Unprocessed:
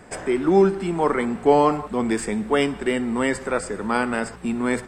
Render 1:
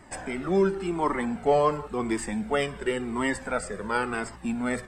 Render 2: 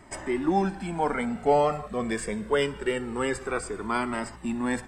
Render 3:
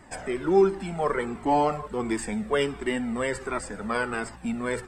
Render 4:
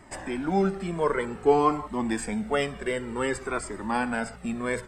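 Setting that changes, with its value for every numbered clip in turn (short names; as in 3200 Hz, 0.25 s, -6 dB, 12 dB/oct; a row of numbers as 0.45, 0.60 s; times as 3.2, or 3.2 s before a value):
cascading flanger, rate: 0.93, 0.24, 1.4, 0.54 Hz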